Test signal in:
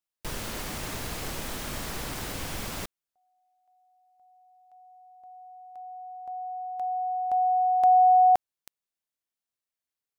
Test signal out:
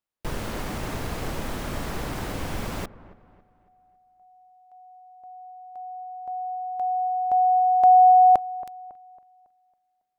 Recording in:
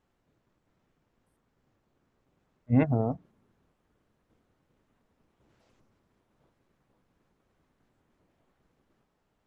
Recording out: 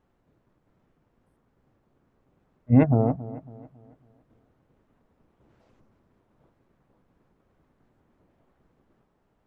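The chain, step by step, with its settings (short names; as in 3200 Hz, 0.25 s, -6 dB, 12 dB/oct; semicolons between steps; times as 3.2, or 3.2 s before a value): high shelf 2300 Hz -11 dB; on a send: dark delay 0.276 s, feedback 39%, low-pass 1600 Hz, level -16.5 dB; on the sum: gain +6 dB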